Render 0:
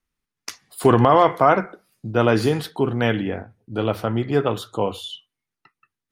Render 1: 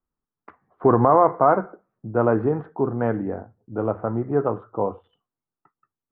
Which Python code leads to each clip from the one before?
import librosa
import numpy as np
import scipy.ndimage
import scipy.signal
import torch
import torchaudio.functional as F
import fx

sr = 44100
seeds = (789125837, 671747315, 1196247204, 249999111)

y = fx.wiener(x, sr, points=9)
y = scipy.signal.sosfilt(scipy.signal.butter(4, 1300.0, 'lowpass', fs=sr, output='sos'), y)
y = fx.low_shelf(y, sr, hz=230.0, db=-5.0)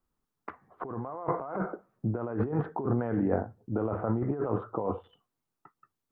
y = fx.over_compress(x, sr, threshold_db=-29.0, ratio=-1.0)
y = y * 10.0 ** (-2.5 / 20.0)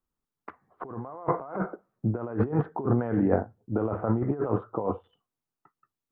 y = fx.upward_expand(x, sr, threshold_db=-45.0, expansion=1.5)
y = y * 10.0 ** (5.0 / 20.0)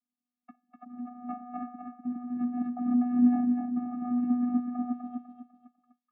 y = fx.vocoder(x, sr, bands=16, carrier='square', carrier_hz=245.0)
y = fx.echo_feedback(y, sr, ms=249, feedback_pct=34, wet_db=-4)
y = y * 10.0 ** (-3.5 / 20.0)